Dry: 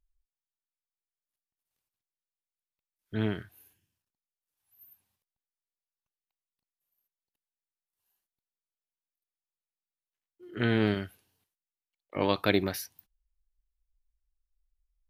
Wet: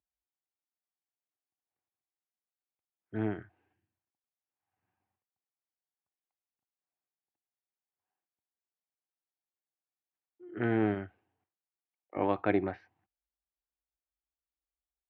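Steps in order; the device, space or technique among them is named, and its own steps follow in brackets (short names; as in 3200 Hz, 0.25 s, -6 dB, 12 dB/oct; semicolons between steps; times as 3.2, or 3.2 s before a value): bass cabinet (speaker cabinet 75–2200 Hz, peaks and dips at 160 Hz -5 dB, 330 Hz +6 dB, 760 Hz +9 dB); gain -4.5 dB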